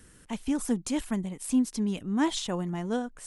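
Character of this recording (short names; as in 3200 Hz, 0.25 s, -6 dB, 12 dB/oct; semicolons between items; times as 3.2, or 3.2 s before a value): noise floor -55 dBFS; spectral tilt -5.0 dB/oct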